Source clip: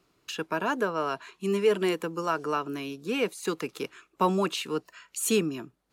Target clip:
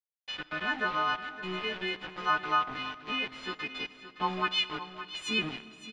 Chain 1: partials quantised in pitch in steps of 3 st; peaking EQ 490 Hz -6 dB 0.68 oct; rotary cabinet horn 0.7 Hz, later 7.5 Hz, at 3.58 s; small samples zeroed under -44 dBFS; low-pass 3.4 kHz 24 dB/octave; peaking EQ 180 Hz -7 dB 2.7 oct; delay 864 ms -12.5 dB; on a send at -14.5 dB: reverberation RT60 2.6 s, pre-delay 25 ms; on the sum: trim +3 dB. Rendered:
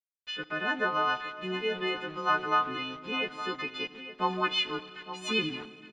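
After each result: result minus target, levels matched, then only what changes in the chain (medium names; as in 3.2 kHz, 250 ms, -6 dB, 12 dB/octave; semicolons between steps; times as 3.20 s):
echo 298 ms late; small samples zeroed: distortion -11 dB; 500 Hz band +4.5 dB
change: delay 566 ms -12.5 dB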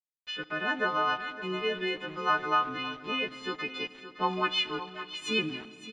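small samples zeroed: distortion -11 dB; 500 Hz band +4.5 dB
change: small samples zeroed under -36 dBFS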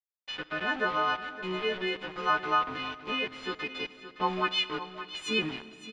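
500 Hz band +4.5 dB
change: first peaking EQ 490 Hz -15.5 dB 0.68 oct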